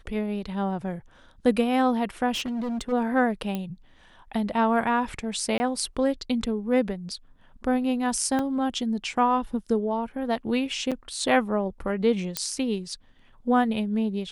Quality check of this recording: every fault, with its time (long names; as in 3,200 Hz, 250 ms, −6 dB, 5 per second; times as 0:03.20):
0:02.32–0:02.93: clipping −26.5 dBFS
0:03.55: click −17 dBFS
0:05.58–0:05.60: drop-out 20 ms
0:08.39: drop-out 3 ms
0:10.91–0:10.92: drop-out 6.4 ms
0:12.37: click −8 dBFS